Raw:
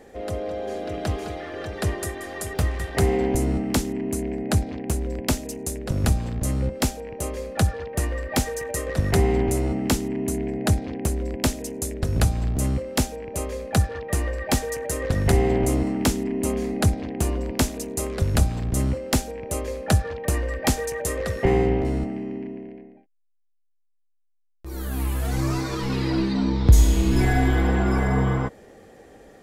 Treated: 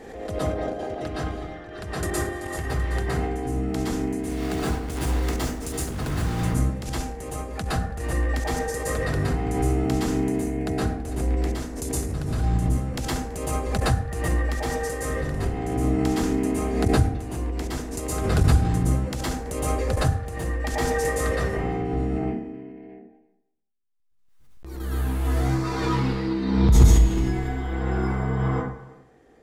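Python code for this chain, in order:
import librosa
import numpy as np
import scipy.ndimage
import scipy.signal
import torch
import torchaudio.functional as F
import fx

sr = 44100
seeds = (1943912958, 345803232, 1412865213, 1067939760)

y = fx.block_float(x, sr, bits=3, at=(4.23, 6.39), fade=0.02)
y = fx.high_shelf(y, sr, hz=9300.0, db=-7.5)
y = fx.notch(y, sr, hz=570.0, q=12.0)
y = fx.level_steps(y, sr, step_db=15)
y = fx.tremolo_random(y, sr, seeds[0], hz=3.5, depth_pct=55)
y = y + 10.0 ** (-22.5 / 20.0) * np.pad(y, (int(330 * sr / 1000.0), 0))[:len(y)]
y = fx.rev_plate(y, sr, seeds[1], rt60_s=0.67, hf_ratio=0.5, predelay_ms=105, drr_db=-7.5)
y = fx.pre_swell(y, sr, db_per_s=46.0)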